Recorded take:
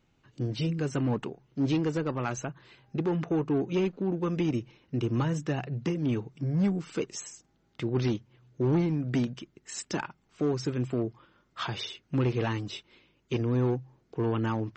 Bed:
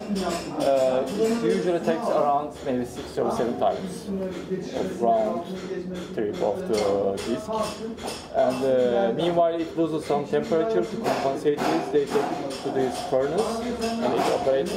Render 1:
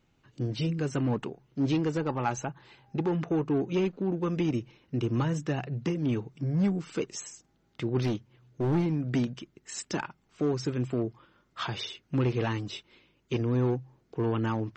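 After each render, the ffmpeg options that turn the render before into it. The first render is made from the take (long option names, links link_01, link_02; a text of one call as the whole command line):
ffmpeg -i in.wav -filter_complex "[0:a]asettb=1/sr,asplit=3[link_01][link_02][link_03];[link_01]atrim=end=2.004[link_04];[link_02]atrim=start=2:end=3.08,asetpts=PTS-STARTPTS,afade=type=in:duration=0.004:curve=qsin,afade=type=out:start_time=1.076:duration=0.004:curve=qsin,equalizer=frequency=840:width=7:gain=10[link_05];[link_03]atrim=start=3.076[link_06];[link_04][link_05]acrossfade=duration=0.004:curve1=hsin:curve2=qsin[link_07];[link_07][link_06]acrossfade=duration=0.004:curve1=qsin:curve2=hsin,asettb=1/sr,asplit=3[link_08][link_09][link_10];[link_08]atrim=end=8.024[link_11];[link_09]atrim=start=8.02:end=8.86,asetpts=PTS-STARTPTS,afade=type=in:duration=0.004:curve=qsin,afade=type=out:start_time=0.836:duration=0.004:curve=qsin,aeval=exprs='clip(val(0),-1,0.0501)':channel_layout=same[link_12];[link_10]atrim=start=8.856[link_13];[link_11][link_12]acrossfade=duration=0.004:curve1=hsin:curve2=qsin[link_14];[link_14][link_13]acrossfade=duration=0.004:curve1=qsin:curve2=hsin" out.wav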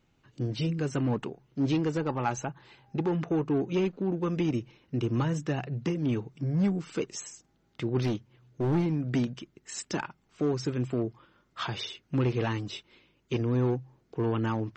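ffmpeg -i in.wav -af anull out.wav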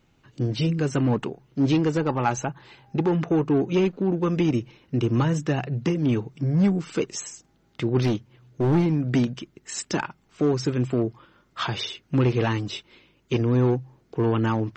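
ffmpeg -i in.wav -af "volume=6dB" out.wav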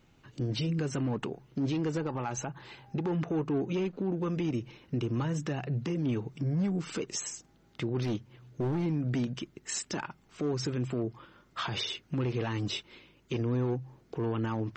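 ffmpeg -i in.wav -af "acompressor=threshold=-25dB:ratio=6,alimiter=limit=-24dB:level=0:latency=1:release=81" out.wav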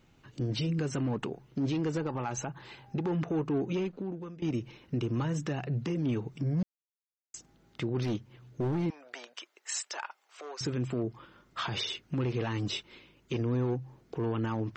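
ffmpeg -i in.wav -filter_complex "[0:a]asettb=1/sr,asplit=3[link_01][link_02][link_03];[link_01]atrim=end=8.904[link_04];[link_02]atrim=start=8.9:end=10.61,asetpts=PTS-STARTPTS,afade=type=in:duration=0.004:curve=qsin,afade=type=out:start_time=1.706:duration=0.004:curve=qsin,highpass=frequency=590:width=0.5412,highpass=frequency=590:width=1.3066[link_05];[link_03]atrim=start=10.606[link_06];[link_04][link_05]acrossfade=duration=0.004:curve1=hsin:curve2=qsin[link_07];[link_07][link_06]acrossfade=duration=0.004:curve1=qsin:curve2=hsin,asplit=4[link_08][link_09][link_10][link_11];[link_08]atrim=end=4.42,asetpts=PTS-STARTPTS,afade=type=out:start_time=3.73:duration=0.69:silence=0.1[link_12];[link_09]atrim=start=4.42:end=6.63,asetpts=PTS-STARTPTS,afade=type=in:duration=0.004:curve=hsin:silence=0.1,afade=type=out:start_time=2.206:duration=0.004:curve=hsin[link_13];[link_10]atrim=start=6.63:end=7.34,asetpts=PTS-STARTPTS,volume=0[link_14];[link_11]atrim=start=7.34,asetpts=PTS-STARTPTS,afade=type=in:duration=0.004:curve=hsin[link_15];[link_12][link_13][link_14][link_15]concat=n=4:v=0:a=1" out.wav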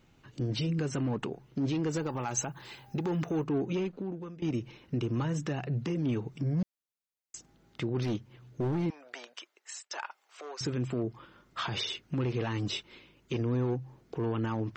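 ffmpeg -i in.wav -filter_complex "[0:a]asettb=1/sr,asplit=3[link_01][link_02][link_03];[link_01]atrim=end=1.914[link_04];[link_02]atrim=start=1.91:end=3.44,asetpts=PTS-STARTPTS,afade=type=in:duration=0.004:curve=qsin,afade=type=out:start_time=1.526:duration=0.004:curve=qsin,aemphasis=mode=production:type=50fm[link_05];[link_03]atrim=start=3.436[link_06];[link_04][link_05]acrossfade=duration=0.004:curve1=hsin:curve2=qsin[link_07];[link_07][link_06]acrossfade=duration=0.004:curve1=qsin:curve2=hsin,asplit=2[link_08][link_09];[link_08]atrim=end=9.91,asetpts=PTS-STARTPTS,afade=type=out:start_time=9.3:duration=0.61:silence=0.133352[link_10];[link_09]atrim=start=9.91,asetpts=PTS-STARTPTS,afade=type=in:duration=0.004:curve=hsin:silence=0.133352[link_11];[link_10][link_11]concat=n=2:v=0:a=1" out.wav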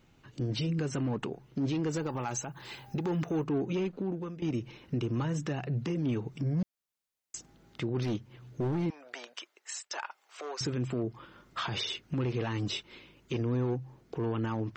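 ffmpeg -i in.wav -af "dynaudnorm=framelen=540:gausssize=7:maxgain=3.5dB,alimiter=level_in=0.5dB:limit=-24dB:level=0:latency=1:release=363,volume=-0.5dB" out.wav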